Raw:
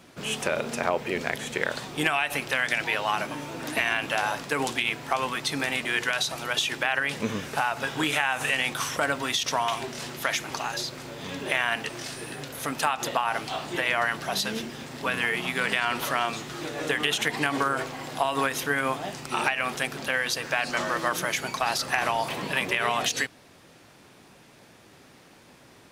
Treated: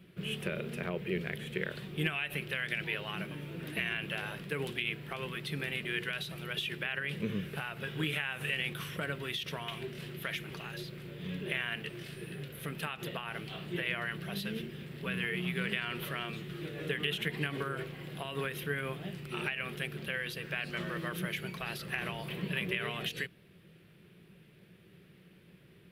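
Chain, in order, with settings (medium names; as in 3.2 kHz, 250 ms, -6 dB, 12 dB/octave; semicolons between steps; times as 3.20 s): FFT filter 120 Hz 0 dB, 180 Hz +9 dB, 260 Hz -11 dB, 370 Hz +1 dB, 830 Hz -18 dB, 1.6 kHz -7 dB, 3 kHz -3 dB, 6.5 kHz -22 dB, 12 kHz -5 dB; trim -3.5 dB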